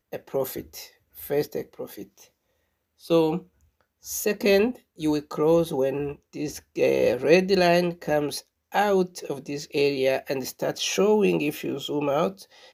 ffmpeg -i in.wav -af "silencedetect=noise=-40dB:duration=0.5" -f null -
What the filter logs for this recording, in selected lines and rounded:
silence_start: 2.22
silence_end: 3.03 | silence_duration: 0.81
silence_start: 3.41
silence_end: 4.05 | silence_duration: 0.63